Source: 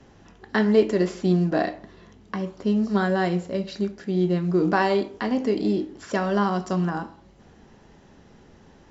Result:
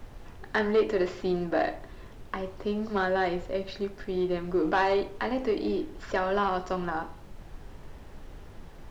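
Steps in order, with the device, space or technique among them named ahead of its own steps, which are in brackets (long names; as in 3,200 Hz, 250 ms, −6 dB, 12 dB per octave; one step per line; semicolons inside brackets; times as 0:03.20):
aircraft cabin announcement (band-pass filter 370–4,000 Hz; soft clipping −16 dBFS, distortion −16 dB; brown noise bed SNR 13 dB)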